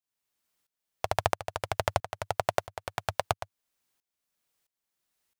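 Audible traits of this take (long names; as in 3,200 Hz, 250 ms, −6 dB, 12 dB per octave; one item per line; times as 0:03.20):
tremolo saw up 1.5 Hz, depth 90%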